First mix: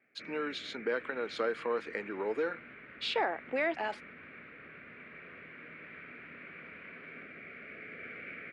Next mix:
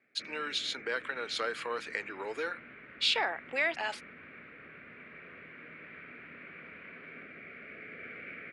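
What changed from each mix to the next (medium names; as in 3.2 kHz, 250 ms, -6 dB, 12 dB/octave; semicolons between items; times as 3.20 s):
speech: add tilt EQ +4.5 dB/octave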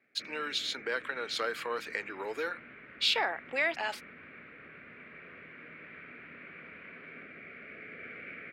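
speech: remove Chebyshev low-pass 11 kHz, order 8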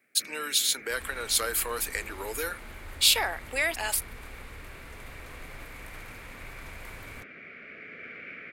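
second sound: remove Butterworth band-pass 1.9 kHz, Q 1.5; master: remove distance through air 220 m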